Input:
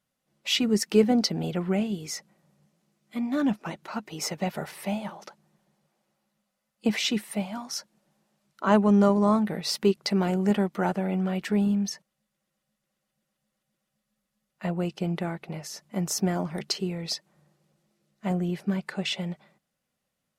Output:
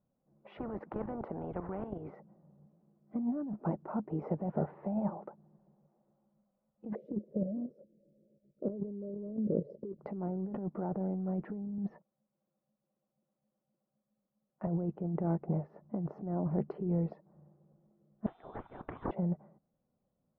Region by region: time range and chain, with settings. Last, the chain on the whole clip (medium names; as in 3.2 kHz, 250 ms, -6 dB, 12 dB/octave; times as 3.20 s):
0.57–2.15 s: tone controls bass -5 dB, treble -12 dB + level held to a coarse grid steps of 10 dB + spectrum-flattening compressor 4:1
6.95–9.99 s: FFT filter 150 Hz 0 dB, 560 Hz +9 dB, 820 Hz -29 dB, 2.5 kHz -30 dB, 11 kHz +14 dB + level held to a coarse grid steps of 10 dB
11.78–14.67 s: high-pass 250 Hz 6 dB/octave + waveshaping leveller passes 1
18.26–19.11 s: compressor with a negative ratio -34 dBFS + frequency inversion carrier 3.8 kHz + spectrum-flattening compressor 2:1
whole clip: Bessel low-pass 630 Hz, order 4; compressor with a negative ratio -33 dBFS, ratio -1; trim -1.5 dB